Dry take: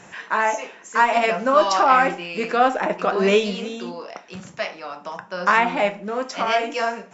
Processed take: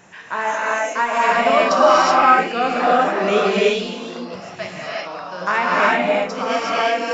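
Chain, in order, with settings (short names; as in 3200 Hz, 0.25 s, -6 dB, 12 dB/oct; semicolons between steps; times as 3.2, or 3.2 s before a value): non-linear reverb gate 0.4 s rising, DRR -5.5 dB; downsampling 16000 Hz; gain -3.5 dB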